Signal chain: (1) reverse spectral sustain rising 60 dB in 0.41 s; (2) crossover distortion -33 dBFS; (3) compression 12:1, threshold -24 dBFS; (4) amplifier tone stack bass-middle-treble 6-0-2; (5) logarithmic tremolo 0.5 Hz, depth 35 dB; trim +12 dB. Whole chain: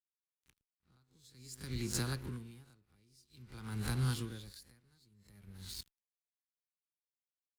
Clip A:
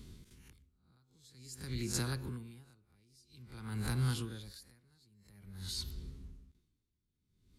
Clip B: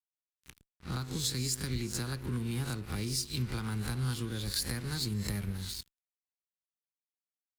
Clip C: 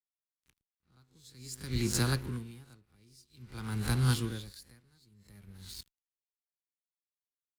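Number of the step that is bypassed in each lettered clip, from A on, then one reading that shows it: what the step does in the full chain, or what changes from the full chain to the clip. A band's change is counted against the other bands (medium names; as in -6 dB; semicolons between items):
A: 2, distortion -15 dB; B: 5, momentary loudness spread change -15 LU; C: 3, mean gain reduction 5.0 dB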